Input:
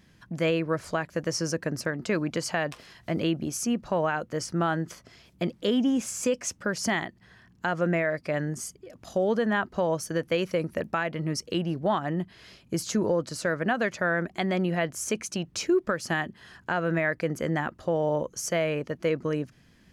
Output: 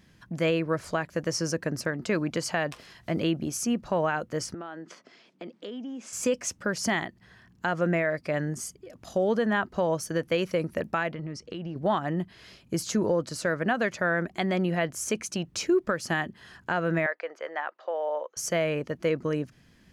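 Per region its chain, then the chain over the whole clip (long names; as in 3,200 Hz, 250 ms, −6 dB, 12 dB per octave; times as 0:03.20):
0:04.54–0:06.13: high-pass filter 220 Hz 24 dB per octave + high-frequency loss of the air 96 metres + downward compressor 3 to 1, threshold −39 dBFS
0:11.13–0:11.76: downward compressor 12 to 1, threshold −31 dBFS + high-frequency loss of the air 100 metres
0:17.06–0:18.37: high-pass filter 540 Hz 24 dB per octave + high-frequency loss of the air 220 metres
whole clip: no processing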